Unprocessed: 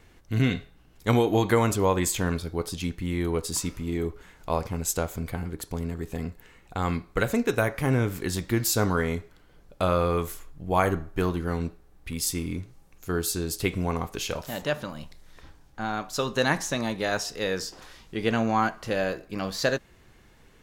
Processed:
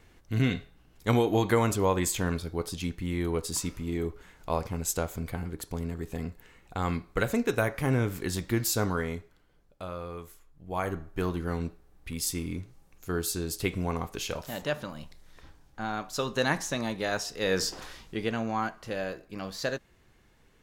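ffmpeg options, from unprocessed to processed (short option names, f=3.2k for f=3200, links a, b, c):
-af "volume=17.5dB,afade=t=out:st=8.56:d=1.28:silence=0.251189,afade=t=in:st=10.48:d=0.92:silence=0.266073,afade=t=in:st=17.38:d=0.32:silence=0.375837,afade=t=out:st=17.7:d=0.61:silence=0.251189"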